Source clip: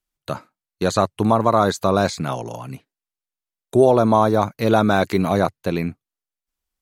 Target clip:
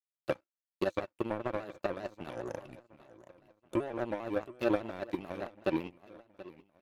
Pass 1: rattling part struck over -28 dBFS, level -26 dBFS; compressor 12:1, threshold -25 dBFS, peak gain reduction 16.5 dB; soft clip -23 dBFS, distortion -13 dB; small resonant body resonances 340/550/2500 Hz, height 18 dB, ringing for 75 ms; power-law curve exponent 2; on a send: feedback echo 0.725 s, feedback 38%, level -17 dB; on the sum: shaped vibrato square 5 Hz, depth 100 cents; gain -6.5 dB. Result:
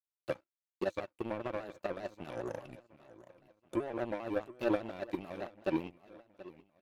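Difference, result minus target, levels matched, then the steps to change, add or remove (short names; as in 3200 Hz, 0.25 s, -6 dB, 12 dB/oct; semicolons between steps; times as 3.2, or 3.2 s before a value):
soft clip: distortion +13 dB
change: soft clip -13.5 dBFS, distortion -26 dB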